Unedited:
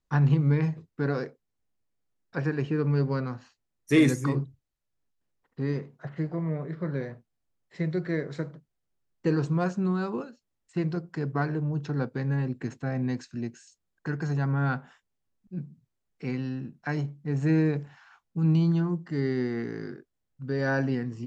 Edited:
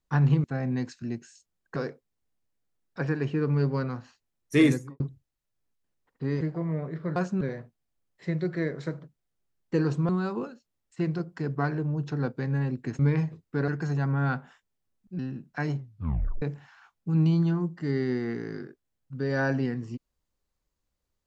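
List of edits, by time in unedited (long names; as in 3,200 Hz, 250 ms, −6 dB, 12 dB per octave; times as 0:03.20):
0:00.44–0:01.13: swap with 0:12.76–0:14.08
0:04.00–0:04.37: fade out and dull
0:05.78–0:06.18: remove
0:09.61–0:09.86: move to 0:06.93
0:15.59–0:16.48: remove
0:17.06: tape stop 0.65 s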